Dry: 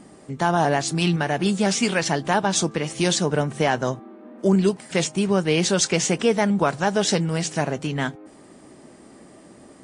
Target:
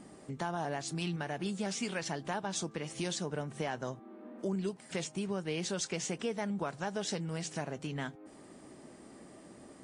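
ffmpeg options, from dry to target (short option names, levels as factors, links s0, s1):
-af "acompressor=threshold=0.02:ratio=2,volume=0.501"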